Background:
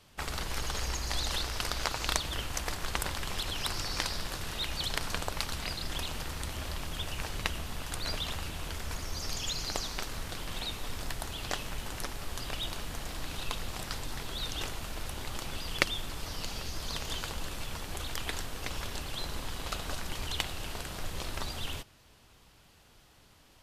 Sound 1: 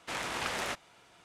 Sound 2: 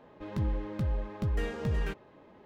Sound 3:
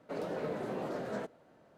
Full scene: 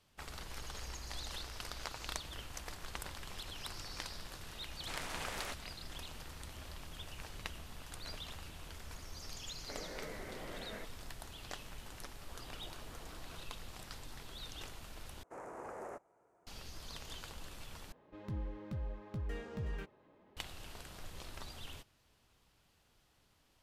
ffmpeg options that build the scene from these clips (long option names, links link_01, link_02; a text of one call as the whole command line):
ffmpeg -i bed.wav -i cue0.wav -i cue1.wav -i cue2.wav -filter_complex "[1:a]asplit=2[link_01][link_02];[3:a]asplit=2[link_03][link_04];[0:a]volume=-11.5dB[link_05];[link_01]highshelf=frequency=12000:gain=11.5[link_06];[link_03]lowpass=frequency=2100:width_type=q:width=6.9[link_07];[link_04]aeval=exprs='val(0)*sin(2*PI*510*n/s+510*0.8/5.2*sin(2*PI*5.2*n/s))':channel_layout=same[link_08];[link_02]firequalizer=gain_entry='entry(210,0);entry(400,10);entry(2200,-12);entry(3400,-29);entry(6700,-8)':delay=0.05:min_phase=1[link_09];[2:a]acompressor=mode=upward:threshold=-53dB:ratio=2.5:attack=3.2:release=140:knee=2.83:detection=peak[link_10];[link_05]asplit=3[link_11][link_12][link_13];[link_11]atrim=end=15.234[link_14];[link_09]atrim=end=1.24,asetpts=PTS-STARTPTS,volume=-13.5dB[link_15];[link_12]atrim=start=16.466:end=17.924[link_16];[link_10]atrim=end=2.45,asetpts=PTS-STARTPTS,volume=-10dB[link_17];[link_13]atrim=start=20.366[link_18];[link_06]atrim=end=1.24,asetpts=PTS-STARTPTS,volume=-9dB,afade=type=in:duration=0.004:curve=hsin,afade=type=out:start_time=1.236:duration=0.004:curve=hsin,adelay=4790[link_19];[link_07]atrim=end=1.77,asetpts=PTS-STARTPTS,volume=-12dB,afade=type=in:duration=0.004:curve=hsin,afade=type=out:start_time=1.766:duration=0.004:curve=hsin,adelay=9590[link_20];[link_08]atrim=end=1.77,asetpts=PTS-STARTPTS,volume=-16.5dB,afade=type=in:duration=0.004:curve=hsin,afade=type=out:start_time=1.766:duration=0.004:curve=hsin,adelay=12180[link_21];[link_14][link_15]acrossfade=duration=0.004:curve1=hsin:curve2=hsin[link_22];[link_22][link_16]acrossfade=duration=0.004:curve1=hsin:curve2=hsin[link_23];[link_23][link_17]acrossfade=duration=0.004:curve1=hsin:curve2=hsin[link_24];[link_24][link_18]acrossfade=duration=0.004:curve1=hsin:curve2=hsin[link_25];[link_25][link_19][link_20][link_21]amix=inputs=4:normalize=0" out.wav